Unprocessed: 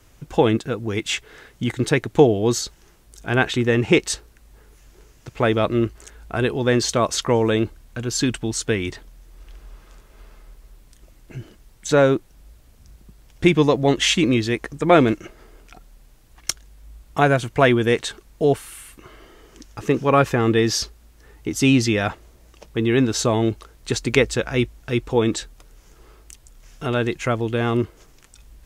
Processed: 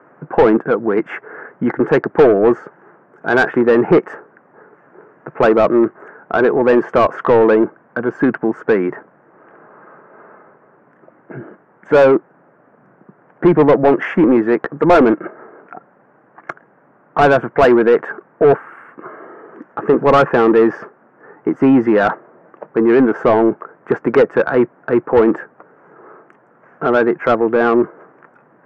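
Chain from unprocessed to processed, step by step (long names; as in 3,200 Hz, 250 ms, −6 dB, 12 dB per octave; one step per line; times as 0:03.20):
elliptic band-pass filter 150–1,600 Hz, stop band 40 dB
mid-hump overdrive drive 25 dB, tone 1,200 Hz, clips at 0 dBFS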